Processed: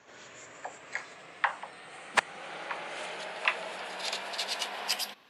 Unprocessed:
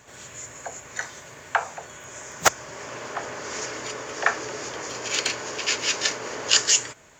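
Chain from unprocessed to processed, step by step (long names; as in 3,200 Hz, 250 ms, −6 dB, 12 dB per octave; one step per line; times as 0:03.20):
gliding playback speed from 97% → 175%
three-way crossover with the lows and the highs turned down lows −15 dB, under 180 Hz, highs −20 dB, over 5,500 Hz
level −4.5 dB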